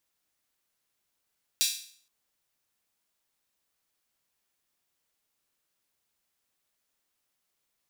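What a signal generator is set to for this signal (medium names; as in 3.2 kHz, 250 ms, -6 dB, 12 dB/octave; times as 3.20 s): open hi-hat length 0.47 s, high-pass 3.7 kHz, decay 0.52 s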